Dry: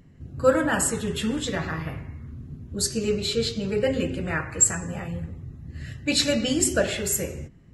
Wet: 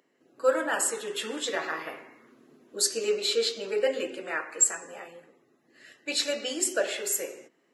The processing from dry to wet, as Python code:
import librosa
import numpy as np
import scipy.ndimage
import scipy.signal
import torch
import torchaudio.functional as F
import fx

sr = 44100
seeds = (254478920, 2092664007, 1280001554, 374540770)

y = scipy.signal.sosfilt(scipy.signal.butter(4, 360.0, 'highpass', fs=sr, output='sos'), x)
y = fx.rider(y, sr, range_db=4, speed_s=2.0)
y = y * 10.0 ** (-2.5 / 20.0)